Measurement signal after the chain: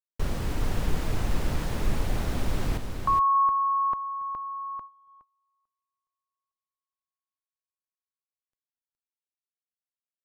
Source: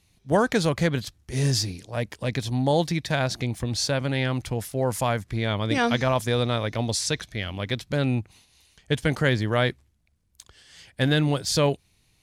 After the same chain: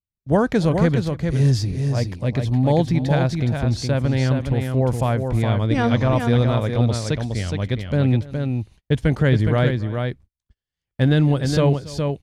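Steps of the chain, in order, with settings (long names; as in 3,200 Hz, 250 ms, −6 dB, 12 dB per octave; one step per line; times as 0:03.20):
spectral tilt −2.5 dB per octave
on a send: multi-tap delay 280/416 ms −20/−5.5 dB
on the sum: noise gate −41 dBFS, range −37 dB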